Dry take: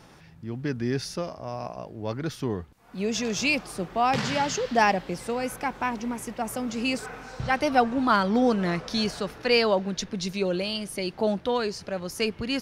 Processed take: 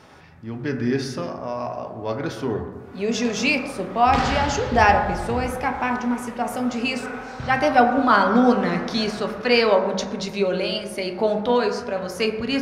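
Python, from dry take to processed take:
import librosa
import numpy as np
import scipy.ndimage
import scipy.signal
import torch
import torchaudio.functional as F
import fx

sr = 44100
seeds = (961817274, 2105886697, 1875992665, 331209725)

y = fx.octave_divider(x, sr, octaves=2, level_db=3.0, at=(4.06, 5.55))
y = fx.lowpass(y, sr, hz=1800.0, slope=6)
y = fx.tilt_eq(y, sr, slope=2.0)
y = fx.rev_fdn(y, sr, rt60_s=1.5, lf_ratio=1.05, hf_ratio=0.3, size_ms=73.0, drr_db=3.0)
y = y * 10.0 ** (5.5 / 20.0)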